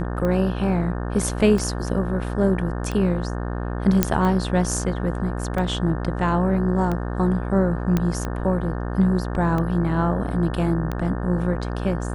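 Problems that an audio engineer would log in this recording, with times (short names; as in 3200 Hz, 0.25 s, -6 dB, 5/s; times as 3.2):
buzz 60 Hz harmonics 30 -27 dBFS
tick 45 rpm -15 dBFS
4.03 pop -1 dBFS
7.97 pop -9 dBFS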